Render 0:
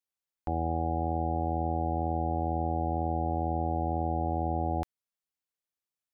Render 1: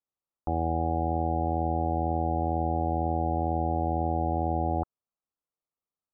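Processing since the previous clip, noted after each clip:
elliptic low-pass filter 1,300 Hz
level +3 dB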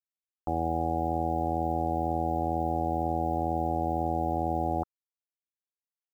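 log-companded quantiser 8 bits
low-shelf EQ 92 Hz −8 dB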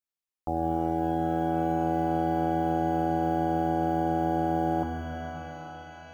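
reverb with rising layers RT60 4 s, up +12 semitones, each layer −8 dB, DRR 4.5 dB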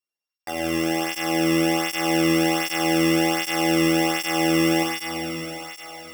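samples sorted by size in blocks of 16 samples
four-comb reverb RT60 2.6 s, combs from 29 ms, DRR 0.5 dB
through-zero flanger with one copy inverted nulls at 1.3 Hz, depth 1.4 ms
level +3.5 dB

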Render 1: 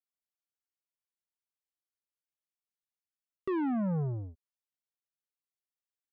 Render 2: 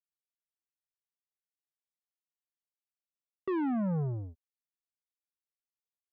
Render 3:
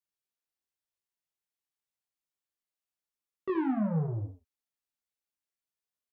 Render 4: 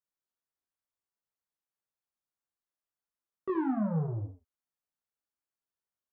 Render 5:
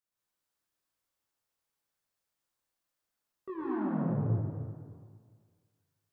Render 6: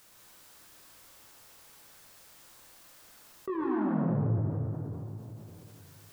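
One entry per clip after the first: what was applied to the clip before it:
noise gate with hold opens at −36 dBFS
chorus effect 0.39 Hz, delay 15.5 ms, depth 3.6 ms; on a send: ambience of single reflections 48 ms −17.5 dB, 76 ms −9 dB; on the sum: level +3.5 dB
high shelf with overshoot 1,800 Hz −6 dB, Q 1.5; level −1 dB
reversed playback; downward compressor 6 to 1, threshold −37 dBFS, peak gain reduction 10.5 dB; reversed playback; dense smooth reverb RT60 1.8 s, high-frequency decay 1×, pre-delay 100 ms, DRR −7 dB
envelope flattener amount 50%

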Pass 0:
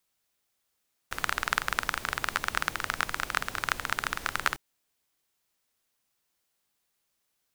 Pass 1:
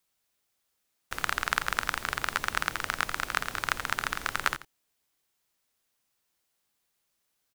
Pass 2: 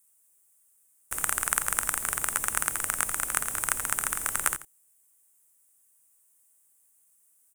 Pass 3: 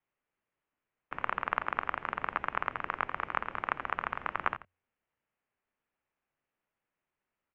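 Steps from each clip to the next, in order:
single-tap delay 86 ms −14.5 dB
high shelf with overshoot 6,300 Hz +13.5 dB, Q 3; level −2 dB
mains-hum notches 60/120/180/240/300 Hz; single-sideband voice off tune −210 Hz 200–3,000 Hz

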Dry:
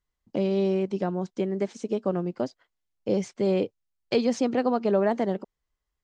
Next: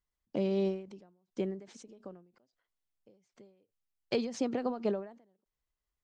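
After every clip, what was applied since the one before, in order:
every ending faded ahead of time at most 110 dB per second
level −5.5 dB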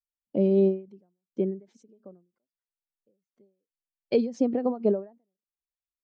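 every bin expanded away from the loudest bin 1.5 to 1
level +6 dB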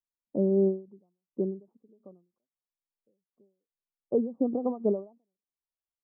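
Chebyshev low-pass filter 1,200 Hz, order 6
level −2.5 dB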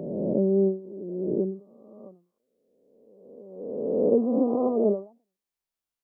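peak hold with a rise ahead of every peak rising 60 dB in 1.70 s
level +1.5 dB

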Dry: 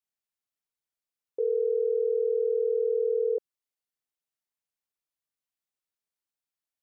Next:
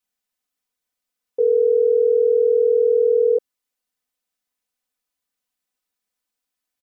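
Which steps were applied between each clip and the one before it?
comb filter 4 ms, depth 96%
level +5.5 dB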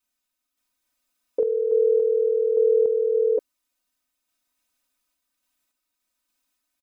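comb filter 3.2 ms, depth 78%
sample-and-hold tremolo, depth 55%
level +6 dB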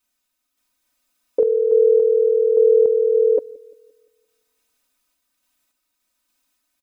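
delay with a low-pass on its return 173 ms, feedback 43%, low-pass 440 Hz, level −21.5 dB
level +5.5 dB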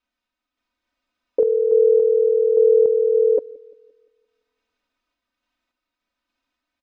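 high-frequency loss of the air 220 metres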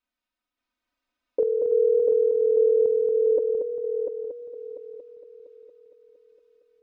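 echo machine with several playback heads 231 ms, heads first and third, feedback 51%, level −6 dB
level −5.5 dB

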